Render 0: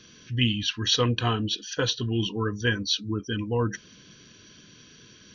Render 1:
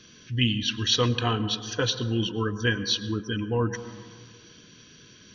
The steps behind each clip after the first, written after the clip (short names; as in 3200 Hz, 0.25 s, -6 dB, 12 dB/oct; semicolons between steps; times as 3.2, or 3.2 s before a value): plate-style reverb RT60 1.9 s, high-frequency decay 0.25×, pre-delay 90 ms, DRR 13 dB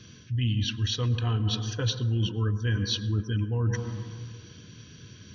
bell 97 Hz +15 dB 1.5 oct; reverse; compressor 6:1, threshold -23 dBFS, peak gain reduction 12 dB; reverse; gain -1 dB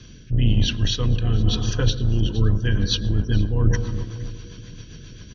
octaver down 2 oct, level +1 dB; feedback echo 0.466 s, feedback 30%, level -17.5 dB; rotary speaker horn 1 Hz, later 7.5 Hz, at 1.7; gain +6.5 dB